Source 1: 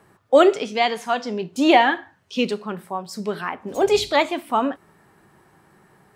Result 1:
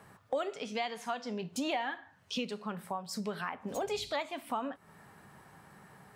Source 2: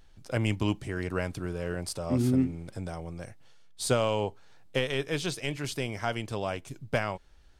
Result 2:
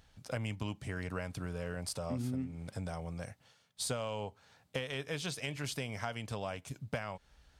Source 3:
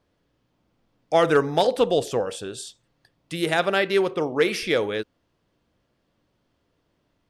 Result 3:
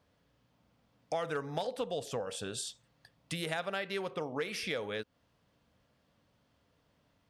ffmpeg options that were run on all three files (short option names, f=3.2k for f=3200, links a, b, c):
-af "highpass=46,equalizer=f=350:t=o:w=0.39:g=-10,acompressor=threshold=-35dB:ratio=4"